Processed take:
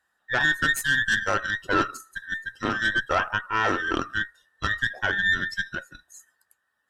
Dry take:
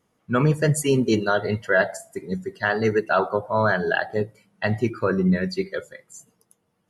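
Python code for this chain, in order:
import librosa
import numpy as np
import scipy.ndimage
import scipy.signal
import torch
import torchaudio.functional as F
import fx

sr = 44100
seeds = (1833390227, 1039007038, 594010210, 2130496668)

y = fx.band_invert(x, sr, width_hz=2000)
y = fx.cheby_harmonics(y, sr, harmonics=(4,), levels_db=(-15,), full_scale_db=-7.0)
y = y * librosa.db_to_amplitude(-4.0)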